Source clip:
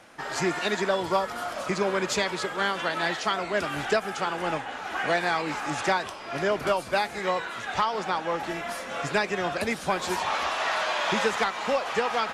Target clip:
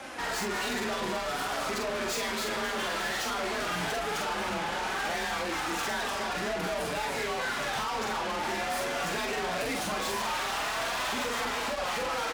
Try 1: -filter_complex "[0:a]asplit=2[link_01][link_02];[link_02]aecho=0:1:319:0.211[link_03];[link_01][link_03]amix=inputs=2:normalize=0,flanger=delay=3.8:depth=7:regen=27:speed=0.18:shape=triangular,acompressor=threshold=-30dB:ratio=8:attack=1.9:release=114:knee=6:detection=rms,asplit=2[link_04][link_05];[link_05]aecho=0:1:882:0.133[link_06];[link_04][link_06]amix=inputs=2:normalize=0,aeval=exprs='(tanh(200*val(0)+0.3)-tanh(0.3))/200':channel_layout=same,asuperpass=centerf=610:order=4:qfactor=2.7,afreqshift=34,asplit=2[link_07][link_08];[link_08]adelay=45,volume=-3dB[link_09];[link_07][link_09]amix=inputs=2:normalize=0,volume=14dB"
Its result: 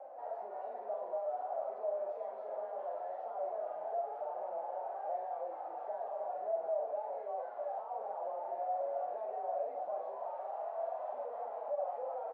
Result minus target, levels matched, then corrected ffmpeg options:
500 Hz band +6.0 dB
-filter_complex "[0:a]asplit=2[link_01][link_02];[link_02]aecho=0:1:319:0.211[link_03];[link_01][link_03]amix=inputs=2:normalize=0,flanger=delay=3.8:depth=7:regen=27:speed=0.18:shape=triangular,acompressor=threshold=-30dB:ratio=8:attack=1.9:release=114:knee=6:detection=rms,asplit=2[link_04][link_05];[link_05]aecho=0:1:882:0.133[link_06];[link_04][link_06]amix=inputs=2:normalize=0,aeval=exprs='(tanh(200*val(0)+0.3)-tanh(0.3))/200':channel_layout=same,afreqshift=34,asplit=2[link_07][link_08];[link_08]adelay=45,volume=-3dB[link_09];[link_07][link_09]amix=inputs=2:normalize=0,volume=14dB"

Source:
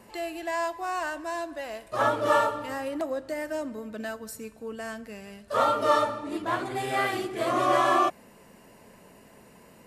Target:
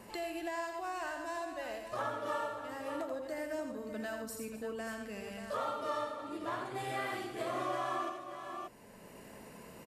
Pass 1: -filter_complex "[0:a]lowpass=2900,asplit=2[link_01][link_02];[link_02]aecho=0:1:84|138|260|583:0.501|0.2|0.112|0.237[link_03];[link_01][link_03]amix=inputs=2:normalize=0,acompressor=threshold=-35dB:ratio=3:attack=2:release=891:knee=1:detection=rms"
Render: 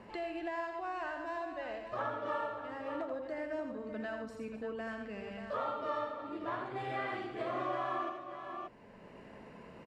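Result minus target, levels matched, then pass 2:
4,000 Hz band −4.5 dB
-filter_complex "[0:a]asplit=2[link_01][link_02];[link_02]aecho=0:1:84|138|260|583:0.501|0.2|0.112|0.237[link_03];[link_01][link_03]amix=inputs=2:normalize=0,acompressor=threshold=-35dB:ratio=3:attack=2:release=891:knee=1:detection=rms"

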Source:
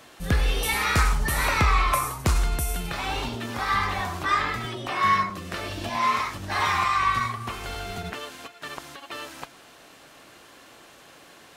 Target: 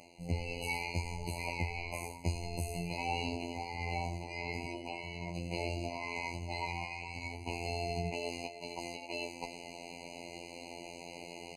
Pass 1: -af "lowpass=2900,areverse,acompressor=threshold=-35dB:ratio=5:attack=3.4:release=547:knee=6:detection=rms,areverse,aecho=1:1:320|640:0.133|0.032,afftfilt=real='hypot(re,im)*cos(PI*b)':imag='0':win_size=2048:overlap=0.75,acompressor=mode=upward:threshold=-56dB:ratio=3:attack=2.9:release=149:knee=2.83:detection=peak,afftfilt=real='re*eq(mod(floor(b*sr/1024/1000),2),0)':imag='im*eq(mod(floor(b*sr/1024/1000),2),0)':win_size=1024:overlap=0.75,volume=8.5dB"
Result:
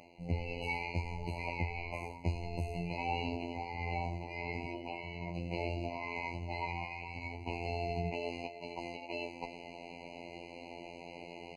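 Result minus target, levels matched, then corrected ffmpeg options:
8,000 Hz band −14.0 dB
-af "lowpass=8300,areverse,acompressor=threshold=-35dB:ratio=5:attack=3.4:release=547:knee=6:detection=rms,areverse,aecho=1:1:320|640:0.133|0.032,afftfilt=real='hypot(re,im)*cos(PI*b)':imag='0':win_size=2048:overlap=0.75,acompressor=mode=upward:threshold=-56dB:ratio=3:attack=2.9:release=149:knee=2.83:detection=peak,afftfilt=real='re*eq(mod(floor(b*sr/1024/1000),2),0)':imag='im*eq(mod(floor(b*sr/1024/1000),2),0)':win_size=1024:overlap=0.75,volume=8.5dB"

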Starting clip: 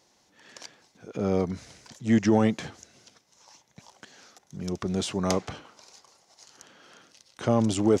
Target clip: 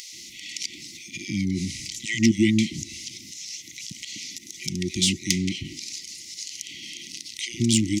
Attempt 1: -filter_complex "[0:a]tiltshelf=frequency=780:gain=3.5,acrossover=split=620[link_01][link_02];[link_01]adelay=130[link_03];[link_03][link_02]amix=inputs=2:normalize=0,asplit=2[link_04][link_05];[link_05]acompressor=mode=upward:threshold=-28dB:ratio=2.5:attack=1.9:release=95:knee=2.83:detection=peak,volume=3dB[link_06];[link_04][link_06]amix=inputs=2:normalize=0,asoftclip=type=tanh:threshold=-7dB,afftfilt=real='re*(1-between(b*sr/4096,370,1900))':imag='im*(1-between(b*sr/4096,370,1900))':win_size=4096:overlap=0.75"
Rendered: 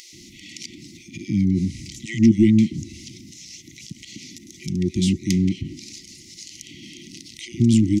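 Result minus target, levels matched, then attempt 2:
1,000 Hz band −6.5 dB
-filter_complex "[0:a]tiltshelf=frequency=780:gain=-5,acrossover=split=620[link_01][link_02];[link_01]adelay=130[link_03];[link_03][link_02]amix=inputs=2:normalize=0,asplit=2[link_04][link_05];[link_05]acompressor=mode=upward:threshold=-28dB:ratio=2.5:attack=1.9:release=95:knee=2.83:detection=peak,volume=3dB[link_06];[link_04][link_06]amix=inputs=2:normalize=0,asoftclip=type=tanh:threshold=-7dB,afftfilt=real='re*(1-between(b*sr/4096,370,1900))':imag='im*(1-between(b*sr/4096,370,1900))':win_size=4096:overlap=0.75"

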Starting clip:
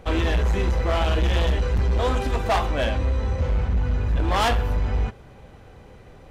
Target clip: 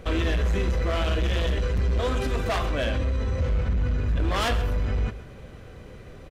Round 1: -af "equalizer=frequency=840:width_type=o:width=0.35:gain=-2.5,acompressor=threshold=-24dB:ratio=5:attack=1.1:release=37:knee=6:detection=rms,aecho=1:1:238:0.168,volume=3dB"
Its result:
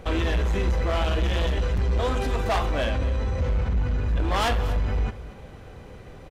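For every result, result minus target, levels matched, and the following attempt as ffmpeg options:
echo 108 ms late; 1,000 Hz band +2.5 dB
-af "equalizer=frequency=840:width_type=o:width=0.35:gain=-2.5,acompressor=threshold=-24dB:ratio=5:attack=1.1:release=37:knee=6:detection=rms,aecho=1:1:130:0.168,volume=3dB"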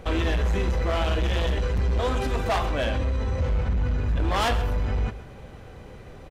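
1,000 Hz band +3.0 dB
-af "equalizer=frequency=840:width_type=o:width=0.35:gain=-10.5,acompressor=threshold=-24dB:ratio=5:attack=1.1:release=37:knee=6:detection=rms,aecho=1:1:130:0.168,volume=3dB"

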